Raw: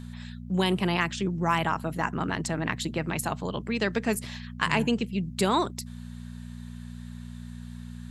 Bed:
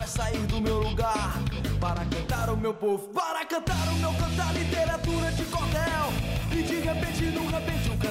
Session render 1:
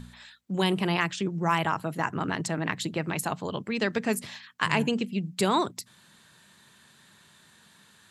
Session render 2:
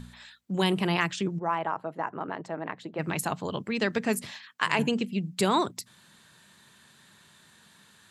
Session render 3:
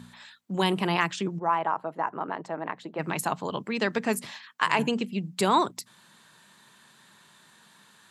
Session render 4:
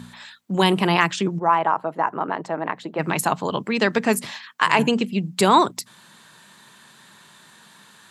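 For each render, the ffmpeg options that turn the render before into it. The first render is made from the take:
-af "bandreject=f=60:t=h:w=4,bandreject=f=120:t=h:w=4,bandreject=f=180:t=h:w=4,bandreject=f=240:t=h:w=4"
-filter_complex "[0:a]asplit=3[a][b][c];[a]afade=t=out:st=1.38:d=0.02[d];[b]bandpass=f=660:t=q:w=0.99,afade=t=in:st=1.38:d=0.02,afade=t=out:st=2.98:d=0.02[e];[c]afade=t=in:st=2.98:d=0.02[f];[d][e][f]amix=inputs=3:normalize=0,asettb=1/sr,asplit=3[g][h][i];[g]atrim=end=4.314[j];[h]atrim=start=4.31:end=4.79,asetpts=PTS-STARTPTS,afade=t=in:d=0.004:c=qsin,afade=t=out:st=0.476:d=0.004:c=qsin,bass=f=250:g=-11,treble=f=4k:g=-1[k];[i]atrim=start=4.786[l];[j][k]acrossfade=d=0.004:c1=hsin:c2=qsin[m];[m][l]acrossfade=d=0.004:c1=qsin:c2=hsin"
-af "highpass=140,equalizer=f=970:t=o:w=0.84:g=4.5"
-af "volume=7dB,alimiter=limit=-2dB:level=0:latency=1"

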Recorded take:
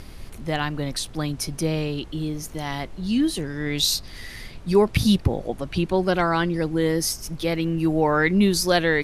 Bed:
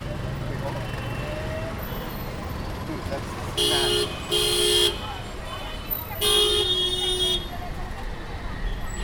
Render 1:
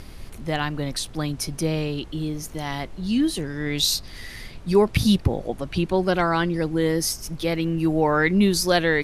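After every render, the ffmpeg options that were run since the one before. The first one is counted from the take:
-af anull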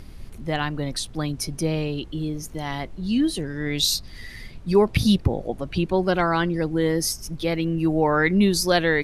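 -af "afftdn=nr=6:nf=-40"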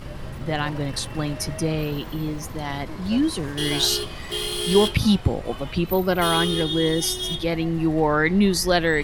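-filter_complex "[1:a]volume=-5.5dB[a];[0:a][a]amix=inputs=2:normalize=0"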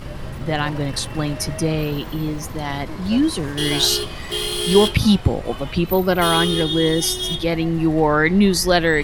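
-af "volume=3.5dB"

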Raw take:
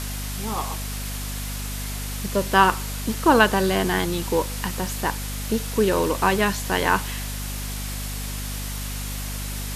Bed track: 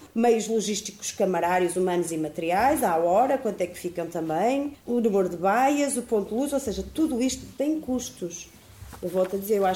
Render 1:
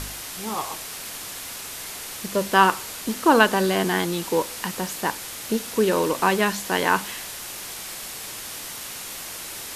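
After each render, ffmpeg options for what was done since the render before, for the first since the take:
-af "bandreject=f=50:t=h:w=4,bandreject=f=100:t=h:w=4,bandreject=f=150:t=h:w=4,bandreject=f=200:t=h:w=4,bandreject=f=250:t=h:w=4"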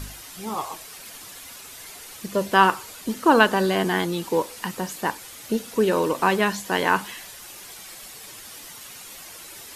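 -af "afftdn=nr=9:nf=-36"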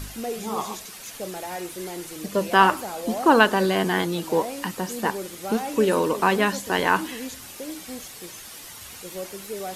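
-filter_complex "[1:a]volume=-10.5dB[a];[0:a][a]amix=inputs=2:normalize=0"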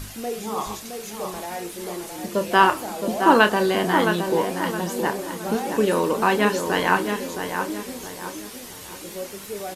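-filter_complex "[0:a]asplit=2[a][b];[b]adelay=29,volume=-9.5dB[c];[a][c]amix=inputs=2:normalize=0,asplit=2[d][e];[e]adelay=667,lowpass=f=2.2k:p=1,volume=-6dB,asplit=2[f][g];[g]adelay=667,lowpass=f=2.2k:p=1,volume=0.41,asplit=2[h][i];[i]adelay=667,lowpass=f=2.2k:p=1,volume=0.41,asplit=2[j][k];[k]adelay=667,lowpass=f=2.2k:p=1,volume=0.41,asplit=2[l][m];[m]adelay=667,lowpass=f=2.2k:p=1,volume=0.41[n];[d][f][h][j][l][n]amix=inputs=6:normalize=0"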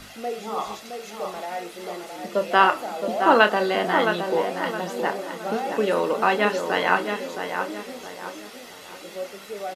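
-filter_complex "[0:a]acrossover=split=210 4900:gain=0.126 1 0.251[a][b][c];[a][b][c]amix=inputs=3:normalize=0,aecho=1:1:1.5:0.36"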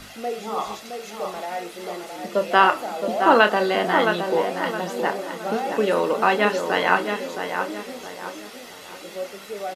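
-af "volume=1.5dB,alimiter=limit=-2dB:level=0:latency=1"

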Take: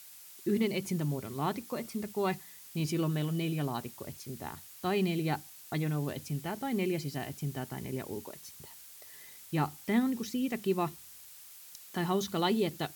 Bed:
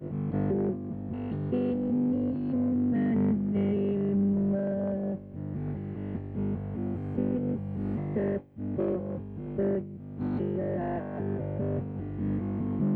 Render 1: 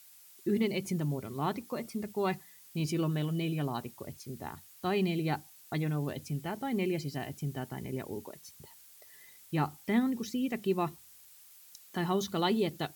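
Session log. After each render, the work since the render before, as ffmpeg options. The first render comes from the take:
-af "afftdn=nr=6:nf=-52"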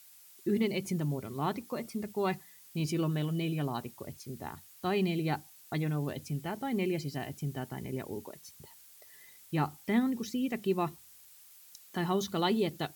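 -af anull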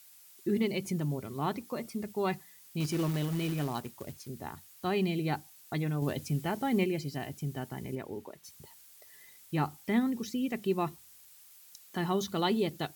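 -filter_complex "[0:a]asettb=1/sr,asplit=3[a][b][c];[a]atrim=end=2.804[d];[b]atrim=start=2.8:end=4.28,asetpts=PTS-STARTPTS,afade=t=in:d=0.004:c=qsin,afade=t=out:st=1.476:d=0.004:c=qsin,acrusher=bits=3:mode=log:mix=0:aa=0.000001[e];[c]atrim=start=4.276[f];[d][e]acrossfade=d=0.004:c1=hsin:c2=qsin[g];[g][f]acrossfade=d=0.004:c1=qsin:c2=hsin,asettb=1/sr,asplit=3[h][i][j];[h]atrim=end=7.954[k];[i]atrim=start=7.95:end=8.44,asetpts=PTS-STARTPTS,afade=t=in:d=0.004:c=qsin,afade=t=out:st=0.486:d=0.004:c=qsin,bass=f=250:g=-3,treble=f=4k:g=-8[l];[j]atrim=start=8.436[m];[k][l]acrossfade=d=0.004:c1=hsin:c2=qsin[n];[n][m]acrossfade=d=0.004:c1=qsin:c2=hsin,asplit=3[o][p][q];[o]atrim=end=6.022[r];[p]atrim=start=6.018:end=6.842,asetpts=PTS-STARTPTS,volume=4dB[s];[q]atrim=start=6.838[t];[r][s]acrossfade=d=0.004:c1=hsin:c2=hsin[u];[u][t]acrossfade=d=0.004:c1=hsin:c2=hsin"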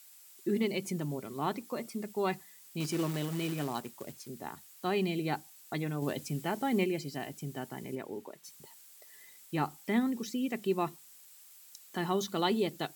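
-af "highpass=180,equalizer=f=7.7k:w=6.6:g=4.5"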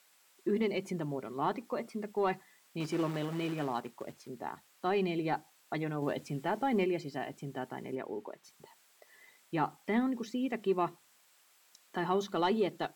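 -filter_complex "[0:a]asplit=2[a][b];[b]highpass=f=720:p=1,volume=12dB,asoftclip=type=tanh:threshold=-15.5dB[c];[a][c]amix=inputs=2:normalize=0,lowpass=f=1k:p=1,volume=-6dB"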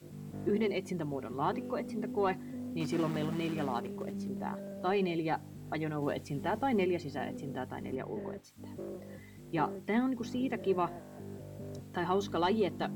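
-filter_complex "[1:a]volume=-13.5dB[a];[0:a][a]amix=inputs=2:normalize=0"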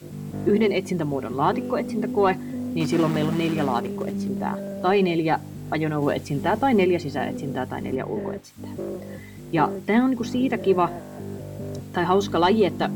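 -af "volume=11dB"

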